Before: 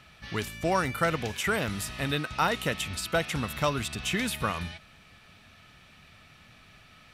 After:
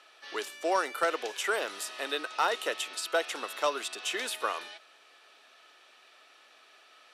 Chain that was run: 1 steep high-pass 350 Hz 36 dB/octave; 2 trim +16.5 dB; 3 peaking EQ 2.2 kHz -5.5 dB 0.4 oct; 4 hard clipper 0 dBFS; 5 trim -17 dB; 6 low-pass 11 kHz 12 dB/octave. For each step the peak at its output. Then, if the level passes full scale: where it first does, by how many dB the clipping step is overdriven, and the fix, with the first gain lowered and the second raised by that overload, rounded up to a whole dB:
-11.5 dBFS, +5.0 dBFS, +4.5 dBFS, 0.0 dBFS, -17.0 dBFS, -16.5 dBFS; step 2, 4.5 dB; step 2 +11.5 dB, step 5 -12 dB

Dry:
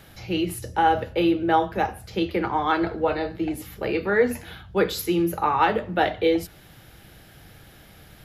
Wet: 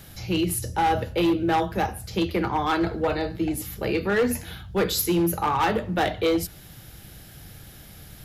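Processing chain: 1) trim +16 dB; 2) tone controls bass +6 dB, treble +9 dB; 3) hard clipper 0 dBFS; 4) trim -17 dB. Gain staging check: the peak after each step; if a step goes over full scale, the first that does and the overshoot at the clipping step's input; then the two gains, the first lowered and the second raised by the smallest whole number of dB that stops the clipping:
+9.0 dBFS, +10.0 dBFS, 0.0 dBFS, -17.0 dBFS; step 1, 10.0 dB; step 1 +6 dB, step 4 -7 dB

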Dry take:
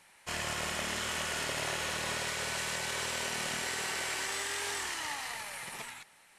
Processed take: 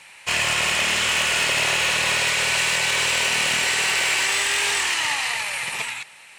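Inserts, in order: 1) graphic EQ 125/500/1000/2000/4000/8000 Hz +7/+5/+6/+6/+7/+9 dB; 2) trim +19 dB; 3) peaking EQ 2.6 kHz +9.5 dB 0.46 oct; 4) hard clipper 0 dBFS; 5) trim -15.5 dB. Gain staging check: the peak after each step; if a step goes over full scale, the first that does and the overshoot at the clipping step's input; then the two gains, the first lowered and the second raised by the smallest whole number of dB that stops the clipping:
-13.0 dBFS, +6.0 dBFS, +8.5 dBFS, 0.0 dBFS, -15.5 dBFS; step 2, 8.5 dB; step 2 +10 dB, step 5 -6.5 dB

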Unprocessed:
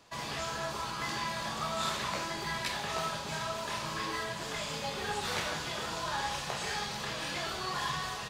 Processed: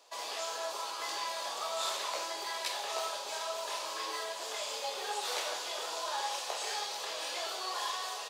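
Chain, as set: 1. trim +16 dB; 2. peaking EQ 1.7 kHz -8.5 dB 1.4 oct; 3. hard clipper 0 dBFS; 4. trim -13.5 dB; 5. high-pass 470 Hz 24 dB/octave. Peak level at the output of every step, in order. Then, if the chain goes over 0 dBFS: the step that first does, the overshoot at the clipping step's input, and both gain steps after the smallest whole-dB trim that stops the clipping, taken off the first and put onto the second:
-3.0 dBFS, -5.0 dBFS, -5.0 dBFS, -18.5 dBFS, -21.0 dBFS; nothing clips

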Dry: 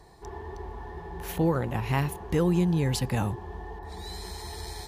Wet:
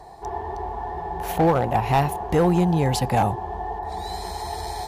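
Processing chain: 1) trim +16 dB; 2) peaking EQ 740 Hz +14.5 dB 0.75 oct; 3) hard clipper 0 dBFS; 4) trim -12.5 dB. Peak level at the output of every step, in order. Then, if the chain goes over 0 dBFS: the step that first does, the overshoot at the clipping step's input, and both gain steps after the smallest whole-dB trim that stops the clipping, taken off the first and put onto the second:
+2.0 dBFS, +8.0 dBFS, 0.0 dBFS, -12.5 dBFS; step 1, 8.0 dB; step 1 +8 dB, step 4 -4.5 dB

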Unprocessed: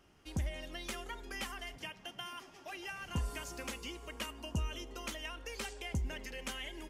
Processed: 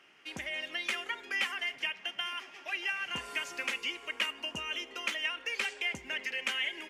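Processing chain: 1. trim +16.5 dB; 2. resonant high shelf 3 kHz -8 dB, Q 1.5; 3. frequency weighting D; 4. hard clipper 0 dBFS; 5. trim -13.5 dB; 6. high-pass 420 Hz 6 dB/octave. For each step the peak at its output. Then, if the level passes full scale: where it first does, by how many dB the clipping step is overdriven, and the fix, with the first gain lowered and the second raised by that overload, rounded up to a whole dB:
-9.5 dBFS, -9.5 dBFS, -4.0 dBFS, -4.0 dBFS, -17.5 dBFS, -17.5 dBFS; nothing clips

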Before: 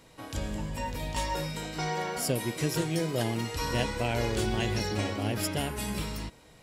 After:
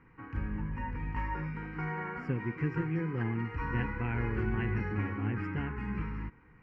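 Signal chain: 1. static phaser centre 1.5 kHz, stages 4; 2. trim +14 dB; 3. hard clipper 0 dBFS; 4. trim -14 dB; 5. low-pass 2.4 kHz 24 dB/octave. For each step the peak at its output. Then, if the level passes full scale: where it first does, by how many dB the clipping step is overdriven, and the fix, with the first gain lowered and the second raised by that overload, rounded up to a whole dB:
-19.0 dBFS, -5.0 dBFS, -5.0 dBFS, -19.0 dBFS, -19.5 dBFS; nothing clips

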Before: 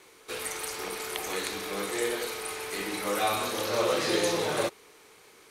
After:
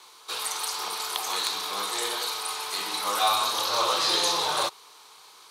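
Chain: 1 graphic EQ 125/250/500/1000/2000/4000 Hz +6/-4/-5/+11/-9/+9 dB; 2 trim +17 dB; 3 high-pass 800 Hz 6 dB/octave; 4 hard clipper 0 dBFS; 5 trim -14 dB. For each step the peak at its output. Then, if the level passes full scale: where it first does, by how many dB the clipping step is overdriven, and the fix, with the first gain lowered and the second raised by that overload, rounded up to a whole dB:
-11.5 dBFS, +5.5 dBFS, +5.0 dBFS, 0.0 dBFS, -14.0 dBFS; step 2, 5.0 dB; step 2 +12 dB, step 5 -9 dB

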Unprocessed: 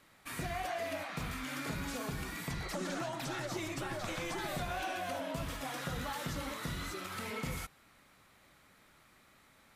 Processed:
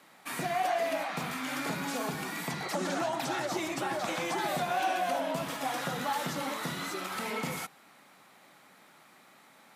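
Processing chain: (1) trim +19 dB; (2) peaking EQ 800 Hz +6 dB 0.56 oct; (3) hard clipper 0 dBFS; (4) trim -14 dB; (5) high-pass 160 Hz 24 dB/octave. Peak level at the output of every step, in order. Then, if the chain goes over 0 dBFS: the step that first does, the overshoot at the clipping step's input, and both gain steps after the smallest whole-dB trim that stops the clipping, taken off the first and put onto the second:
-7.0 dBFS, -5.0 dBFS, -5.0 dBFS, -19.0 dBFS, -19.0 dBFS; nothing clips

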